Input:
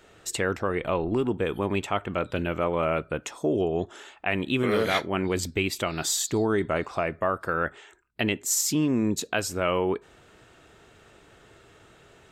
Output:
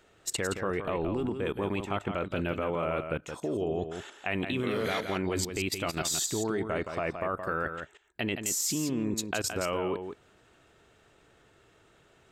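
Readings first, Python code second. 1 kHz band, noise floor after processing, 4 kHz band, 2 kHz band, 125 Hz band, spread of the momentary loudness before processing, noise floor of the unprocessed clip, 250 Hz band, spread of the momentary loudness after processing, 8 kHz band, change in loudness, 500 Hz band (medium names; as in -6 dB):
-5.0 dB, -63 dBFS, -3.5 dB, -5.0 dB, -4.5 dB, 6 LU, -56 dBFS, -5.0 dB, 6 LU, -3.0 dB, -4.5 dB, -5.0 dB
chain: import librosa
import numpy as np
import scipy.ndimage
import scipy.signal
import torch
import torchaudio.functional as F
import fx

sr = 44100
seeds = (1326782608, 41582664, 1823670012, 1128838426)

y = fx.level_steps(x, sr, step_db=16)
y = y + 10.0 ** (-7.5 / 20.0) * np.pad(y, (int(170 * sr / 1000.0), 0))[:len(y)]
y = y * 10.0 ** (1.5 / 20.0)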